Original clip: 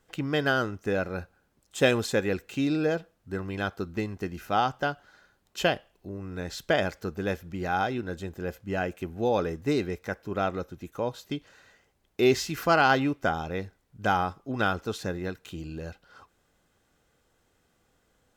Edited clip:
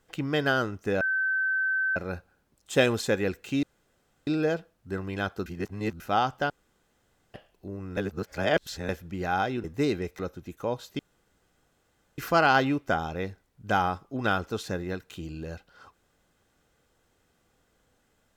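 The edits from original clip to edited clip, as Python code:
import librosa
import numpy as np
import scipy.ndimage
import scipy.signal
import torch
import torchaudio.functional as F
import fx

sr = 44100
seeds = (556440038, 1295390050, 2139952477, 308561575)

y = fx.edit(x, sr, fx.insert_tone(at_s=1.01, length_s=0.95, hz=1540.0, db=-23.5),
    fx.insert_room_tone(at_s=2.68, length_s=0.64),
    fx.reverse_span(start_s=3.87, length_s=0.54),
    fx.room_tone_fill(start_s=4.91, length_s=0.84),
    fx.reverse_span(start_s=6.38, length_s=0.92),
    fx.cut(start_s=8.05, length_s=1.47),
    fx.cut(start_s=10.07, length_s=0.47),
    fx.room_tone_fill(start_s=11.34, length_s=1.19), tone=tone)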